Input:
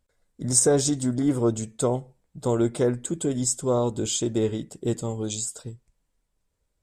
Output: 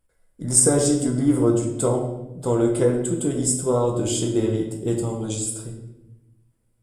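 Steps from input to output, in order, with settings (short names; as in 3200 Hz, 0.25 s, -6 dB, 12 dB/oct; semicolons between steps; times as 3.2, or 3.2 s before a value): thirty-one-band EQ 4000 Hz -7 dB, 6300 Hz -7 dB, 10000 Hz +11 dB; reverb RT60 0.90 s, pre-delay 6 ms, DRR 0.5 dB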